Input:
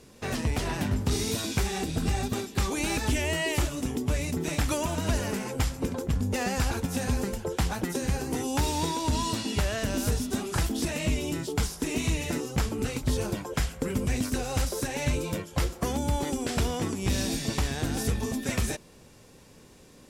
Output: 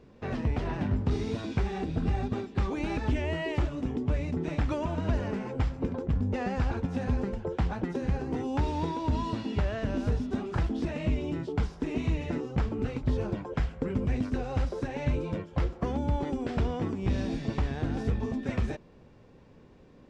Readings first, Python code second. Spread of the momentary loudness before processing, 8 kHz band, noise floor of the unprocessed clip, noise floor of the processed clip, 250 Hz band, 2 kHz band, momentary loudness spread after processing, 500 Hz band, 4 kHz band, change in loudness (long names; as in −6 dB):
3 LU, below −20 dB, −53 dBFS, −54 dBFS, −1.0 dB, −6.5 dB, 2 LU, −1.5 dB, −12.0 dB, −2.0 dB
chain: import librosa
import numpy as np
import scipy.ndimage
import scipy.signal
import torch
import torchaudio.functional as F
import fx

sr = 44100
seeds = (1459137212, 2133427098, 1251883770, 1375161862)

y = fx.spacing_loss(x, sr, db_at_10k=33)